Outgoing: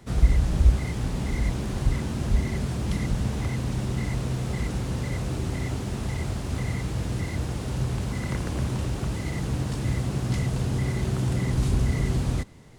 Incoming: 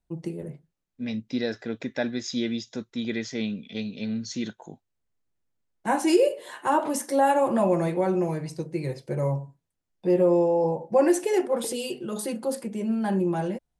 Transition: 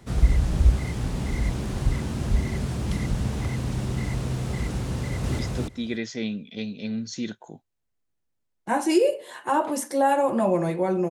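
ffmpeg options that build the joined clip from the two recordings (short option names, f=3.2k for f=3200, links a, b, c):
-filter_complex "[0:a]apad=whole_dur=11.1,atrim=end=11.1,atrim=end=5.392[a];[1:a]atrim=start=2.568:end=8.28[b];[a][b]acrossfade=d=0.004:c1=hsin:c2=hsin,asplit=2[c][d];[d]afade=t=in:st=4.94:d=0.01,afade=t=out:st=5.39:d=0.01,aecho=0:1:290|580:0.944061|0.0944061[e];[c][e]amix=inputs=2:normalize=0"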